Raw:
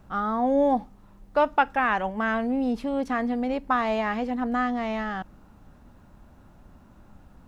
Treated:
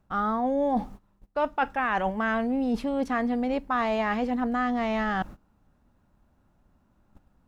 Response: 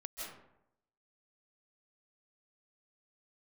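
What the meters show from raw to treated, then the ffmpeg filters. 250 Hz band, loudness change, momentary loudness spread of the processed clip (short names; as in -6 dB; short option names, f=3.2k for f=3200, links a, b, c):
-0.5 dB, -1.5 dB, 4 LU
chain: -af "agate=range=-20dB:threshold=-44dB:ratio=16:detection=peak,areverse,acompressor=threshold=-31dB:ratio=5,areverse,volume=7dB"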